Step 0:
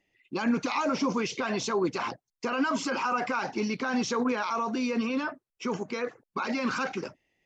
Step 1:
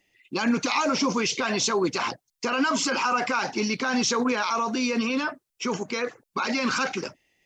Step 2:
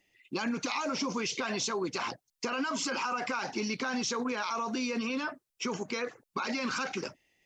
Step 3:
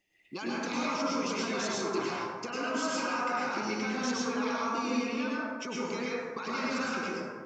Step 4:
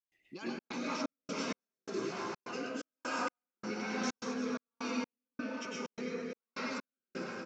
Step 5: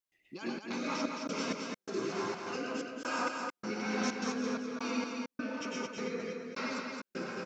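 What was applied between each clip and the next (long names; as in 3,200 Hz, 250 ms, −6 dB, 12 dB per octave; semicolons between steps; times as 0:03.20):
high-shelf EQ 2,700 Hz +9.5 dB; level +2.5 dB
downward compressor 4 to 1, threshold −27 dBFS, peak gain reduction 7.5 dB; level −3 dB
dense smooth reverb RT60 1.7 s, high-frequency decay 0.35×, pre-delay 90 ms, DRR −6 dB; level −6 dB
repeating echo 227 ms, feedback 48%, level −7 dB; rotating-speaker cabinet horn 6 Hz, later 1.2 Hz, at 0:00.31; gate pattern ".xxxx.xxx..xx.." 128 BPM −60 dB; level −3.5 dB
single-tap delay 217 ms −4.5 dB; level +1.5 dB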